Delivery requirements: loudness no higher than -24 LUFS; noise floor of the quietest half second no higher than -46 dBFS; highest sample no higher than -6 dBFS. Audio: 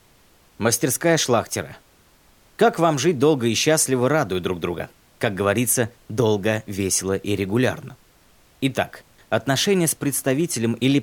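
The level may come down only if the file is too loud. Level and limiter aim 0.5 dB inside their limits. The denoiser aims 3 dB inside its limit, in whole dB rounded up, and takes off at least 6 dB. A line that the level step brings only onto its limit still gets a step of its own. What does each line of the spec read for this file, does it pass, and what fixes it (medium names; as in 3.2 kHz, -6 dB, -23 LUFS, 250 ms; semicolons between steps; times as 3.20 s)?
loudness -21.0 LUFS: fail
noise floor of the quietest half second -55 dBFS: pass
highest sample -5.0 dBFS: fail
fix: trim -3.5 dB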